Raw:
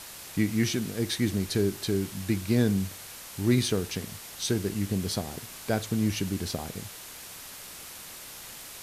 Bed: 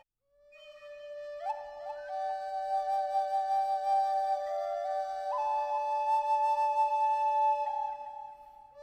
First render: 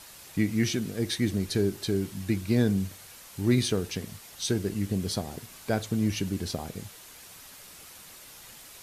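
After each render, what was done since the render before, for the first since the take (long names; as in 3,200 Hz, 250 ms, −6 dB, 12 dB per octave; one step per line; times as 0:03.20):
broadband denoise 6 dB, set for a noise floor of −44 dBFS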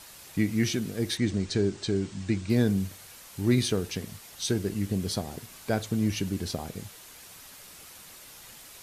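0:01.17–0:02.50: Butterworth low-pass 8,600 Hz 72 dB per octave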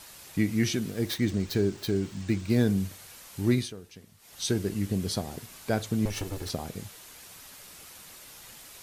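0:00.87–0:02.65: gap after every zero crossing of 0.054 ms
0:03.49–0:04.41: duck −15.5 dB, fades 0.24 s
0:06.05–0:06.50: lower of the sound and its delayed copy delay 2.3 ms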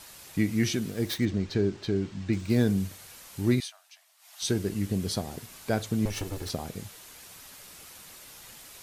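0:01.25–0:02.33: high-frequency loss of the air 95 metres
0:03.60–0:04.42: Chebyshev high-pass filter 620 Hz, order 8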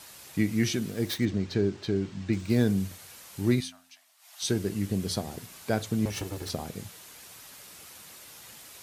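high-pass filter 64 Hz
hum removal 86.38 Hz, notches 3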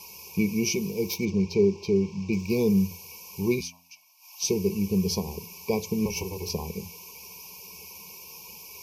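brick-wall band-stop 1,100–2,200 Hz
EQ curve with evenly spaced ripples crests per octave 0.81, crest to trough 16 dB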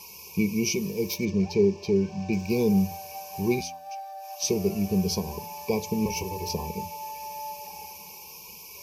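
mix in bed −10 dB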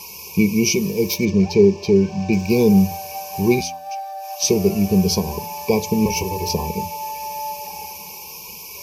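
level +8.5 dB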